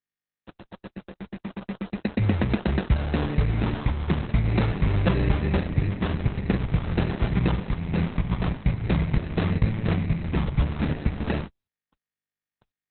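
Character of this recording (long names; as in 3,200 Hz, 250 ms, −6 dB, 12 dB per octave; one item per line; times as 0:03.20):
a quantiser's noise floor 6 bits, dither none
phaser sweep stages 12, 0.45 Hz, lowest notch 760–2,200 Hz
aliases and images of a low sample rate 2,200 Hz, jitter 0%
Opus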